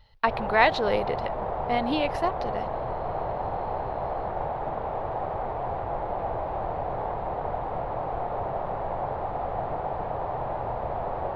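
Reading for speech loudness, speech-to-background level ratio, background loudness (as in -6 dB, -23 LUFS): -26.5 LUFS, 4.5 dB, -31.0 LUFS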